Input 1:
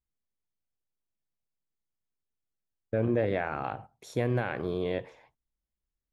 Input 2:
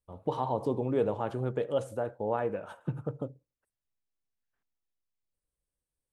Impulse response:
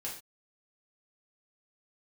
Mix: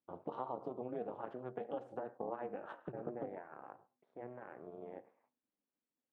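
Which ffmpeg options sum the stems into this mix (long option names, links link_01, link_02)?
-filter_complex "[0:a]lowpass=1500,volume=-14dB,asplit=2[link_01][link_02];[link_02]volume=-15dB[link_03];[1:a]acompressor=threshold=-37dB:ratio=8,volume=3dB[link_04];[2:a]atrim=start_sample=2205[link_05];[link_03][link_05]afir=irnorm=-1:irlink=0[link_06];[link_01][link_04][link_06]amix=inputs=3:normalize=0,tremolo=f=250:d=0.919,highpass=230,lowpass=2300"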